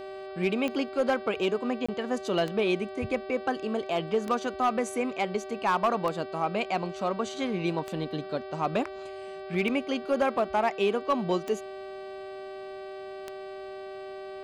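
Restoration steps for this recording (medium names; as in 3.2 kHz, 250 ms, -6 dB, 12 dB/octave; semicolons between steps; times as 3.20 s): de-click; de-hum 385.3 Hz, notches 13; band-stop 610 Hz, Q 30; interpolate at 1.86 s, 25 ms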